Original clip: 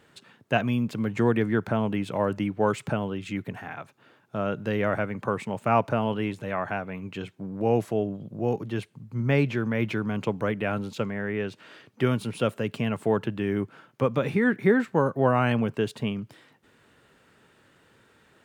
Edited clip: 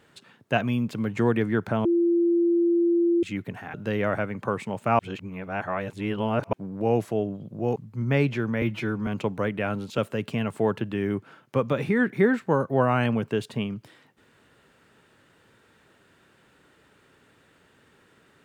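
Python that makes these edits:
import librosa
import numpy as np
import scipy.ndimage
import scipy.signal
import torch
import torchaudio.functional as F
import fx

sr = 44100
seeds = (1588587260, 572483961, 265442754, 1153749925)

y = fx.edit(x, sr, fx.bleep(start_s=1.85, length_s=1.38, hz=342.0, db=-18.0),
    fx.cut(start_s=3.74, length_s=0.8),
    fx.reverse_span(start_s=5.79, length_s=1.54),
    fx.cut(start_s=8.56, length_s=0.38),
    fx.stretch_span(start_s=9.8, length_s=0.3, factor=1.5),
    fx.cut(start_s=11.01, length_s=1.43), tone=tone)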